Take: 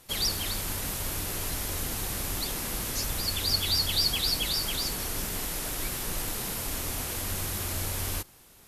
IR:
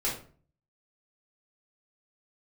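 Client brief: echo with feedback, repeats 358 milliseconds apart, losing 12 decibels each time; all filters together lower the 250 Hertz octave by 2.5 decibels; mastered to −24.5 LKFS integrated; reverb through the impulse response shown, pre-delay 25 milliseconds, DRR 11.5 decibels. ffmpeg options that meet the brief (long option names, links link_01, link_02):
-filter_complex "[0:a]equalizer=frequency=250:width_type=o:gain=-3.5,aecho=1:1:358|716|1074:0.251|0.0628|0.0157,asplit=2[link_01][link_02];[1:a]atrim=start_sample=2205,adelay=25[link_03];[link_02][link_03]afir=irnorm=-1:irlink=0,volume=-18.5dB[link_04];[link_01][link_04]amix=inputs=2:normalize=0,volume=4dB"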